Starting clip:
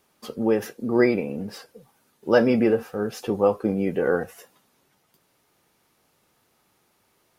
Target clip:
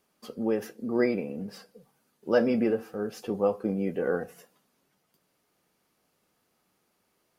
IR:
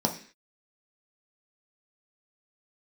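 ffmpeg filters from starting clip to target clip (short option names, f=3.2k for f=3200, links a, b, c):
-filter_complex "[0:a]asplit=2[a][b];[1:a]atrim=start_sample=2205,asetrate=36603,aresample=44100[c];[b][c]afir=irnorm=-1:irlink=0,volume=-26dB[d];[a][d]amix=inputs=2:normalize=0,volume=-7.5dB"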